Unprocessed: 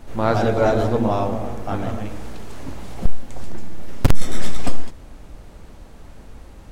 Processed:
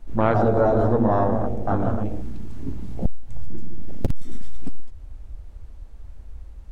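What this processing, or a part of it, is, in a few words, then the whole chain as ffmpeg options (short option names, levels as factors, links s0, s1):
serial compression, peaks first: -filter_complex "[0:a]acompressor=threshold=0.178:ratio=6,acompressor=threshold=0.126:ratio=2.5,afwtdn=0.0355,asplit=3[s0][s1][s2];[s0]afade=t=out:st=3.48:d=0.02[s3];[s1]adynamicequalizer=threshold=0.00178:dfrequency=1800:dqfactor=0.7:tfrequency=1800:tqfactor=0.7:attack=5:release=100:ratio=0.375:range=2:mode=boostabove:tftype=highshelf,afade=t=in:st=3.48:d=0.02,afade=t=out:st=4.58:d=0.02[s4];[s2]afade=t=in:st=4.58:d=0.02[s5];[s3][s4][s5]amix=inputs=3:normalize=0,volume=1.5"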